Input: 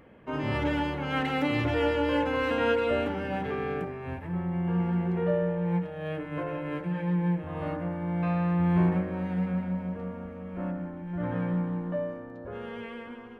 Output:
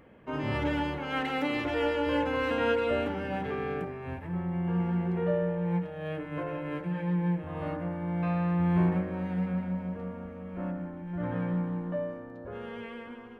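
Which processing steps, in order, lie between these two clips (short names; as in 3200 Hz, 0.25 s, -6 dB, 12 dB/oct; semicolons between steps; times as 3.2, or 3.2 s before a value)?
0.98–2.07 bell 110 Hz -13.5 dB 1 oct; gain -1.5 dB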